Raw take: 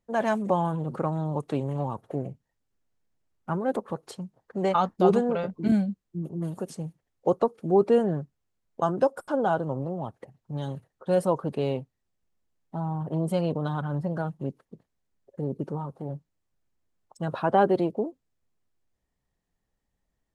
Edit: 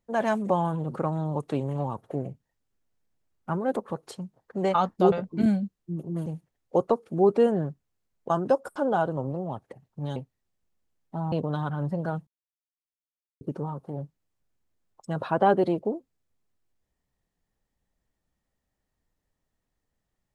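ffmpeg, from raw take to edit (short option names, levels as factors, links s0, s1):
-filter_complex "[0:a]asplit=7[s0][s1][s2][s3][s4][s5][s6];[s0]atrim=end=5.122[s7];[s1]atrim=start=5.378:end=6.522[s8];[s2]atrim=start=6.778:end=10.682[s9];[s3]atrim=start=11.758:end=12.922[s10];[s4]atrim=start=13.438:end=14.39,asetpts=PTS-STARTPTS,afade=t=out:st=0.948:d=0.004:c=hsin[s11];[s5]atrim=start=14.39:end=15.53,asetpts=PTS-STARTPTS,volume=0[s12];[s6]atrim=start=15.53,asetpts=PTS-STARTPTS,afade=t=in:d=0.004:c=hsin[s13];[s7][s8]acrossfade=d=0.004:c1=hsin:c2=hsin[s14];[s14][s9]acrossfade=d=0.004:c1=hsin:c2=hsin[s15];[s15][s10]acrossfade=d=0.004:c1=hsin:c2=hsin[s16];[s11][s12][s13]concat=n=3:v=0:a=1[s17];[s16][s17]acrossfade=d=0.004:c1=hsin:c2=hsin"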